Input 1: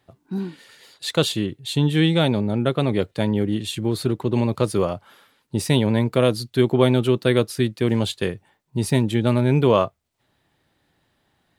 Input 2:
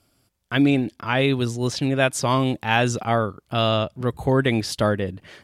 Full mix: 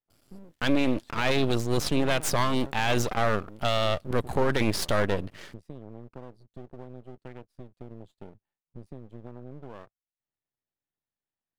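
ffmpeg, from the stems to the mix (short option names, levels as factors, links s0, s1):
-filter_complex "[0:a]aemphasis=mode=reproduction:type=cd,afwtdn=0.0398,acompressor=threshold=0.0447:ratio=6,volume=0.282[s0];[1:a]alimiter=limit=0.188:level=0:latency=1:release=13,adelay=100,volume=1.41[s1];[s0][s1]amix=inputs=2:normalize=0,aeval=exprs='max(val(0),0)':c=same"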